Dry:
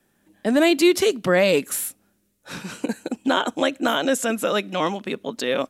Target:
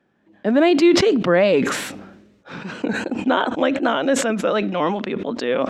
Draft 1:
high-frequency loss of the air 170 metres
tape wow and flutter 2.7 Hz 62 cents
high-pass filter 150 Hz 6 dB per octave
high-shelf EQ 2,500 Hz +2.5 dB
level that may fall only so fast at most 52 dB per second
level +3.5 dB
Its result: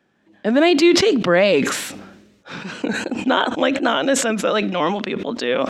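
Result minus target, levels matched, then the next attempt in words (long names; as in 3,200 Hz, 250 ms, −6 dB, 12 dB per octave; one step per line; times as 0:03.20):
4,000 Hz band +3.5 dB
high-frequency loss of the air 170 metres
tape wow and flutter 2.7 Hz 62 cents
high-pass filter 150 Hz 6 dB per octave
high-shelf EQ 2,500 Hz −6.5 dB
level that may fall only so fast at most 52 dB per second
level +3.5 dB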